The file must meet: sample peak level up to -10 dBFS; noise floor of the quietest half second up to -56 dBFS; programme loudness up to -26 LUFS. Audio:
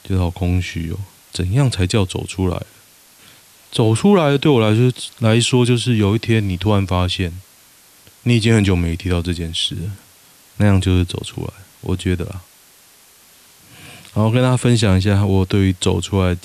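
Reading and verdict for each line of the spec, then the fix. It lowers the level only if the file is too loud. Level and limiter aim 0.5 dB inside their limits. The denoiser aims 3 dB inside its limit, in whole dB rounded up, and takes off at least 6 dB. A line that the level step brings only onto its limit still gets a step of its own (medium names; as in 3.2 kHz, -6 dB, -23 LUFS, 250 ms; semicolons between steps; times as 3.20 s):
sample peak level -4.0 dBFS: fail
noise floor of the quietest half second -49 dBFS: fail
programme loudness -17.5 LUFS: fail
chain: trim -9 dB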